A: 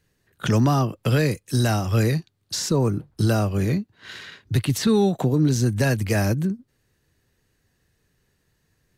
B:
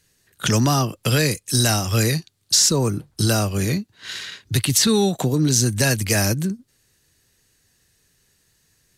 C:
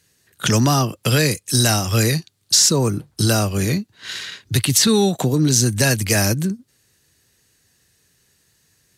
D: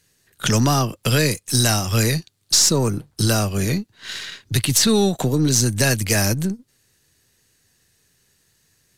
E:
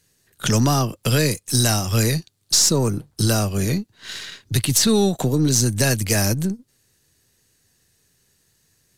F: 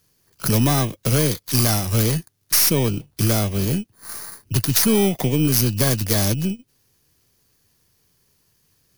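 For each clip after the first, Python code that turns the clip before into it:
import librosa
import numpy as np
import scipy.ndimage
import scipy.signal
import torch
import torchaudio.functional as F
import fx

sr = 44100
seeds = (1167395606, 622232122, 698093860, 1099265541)

y1 = fx.peak_eq(x, sr, hz=8300.0, db=13.5, octaves=2.8)
y2 = scipy.signal.sosfilt(scipy.signal.butter(2, 61.0, 'highpass', fs=sr, output='sos'), y1)
y2 = y2 * librosa.db_to_amplitude(2.0)
y3 = np.where(y2 < 0.0, 10.0 ** (-3.0 / 20.0) * y2, y2)
y4 = fx.peak_eq(y3, sr, hz=2100.0, db=-3.0, octaves=2.2)
y5 = fx.bit_reversed(y4, sr, seeds[0], block=16)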